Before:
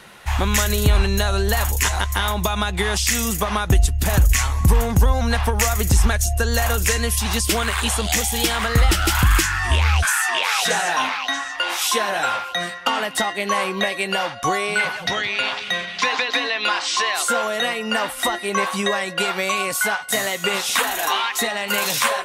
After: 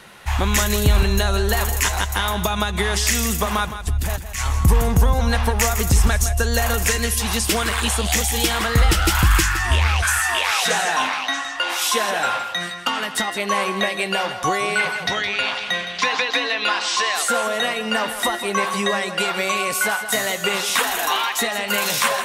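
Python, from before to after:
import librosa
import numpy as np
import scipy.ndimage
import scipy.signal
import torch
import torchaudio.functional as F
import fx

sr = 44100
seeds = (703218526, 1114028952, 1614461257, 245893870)

y = fx.over_compress(x, sr, threshold_db=-21.0, ratio=-0.5, at=(3.57, 4.6), fade=0.02)
y = fx.peak_eq(y, sr, hz=630.0, db=-7.0, octaves=1.1, at=(12.5, 13.28))
y = fx.echo_feedback(y, sr, ms=164, feedback_pct=30, wet_db=-11.0)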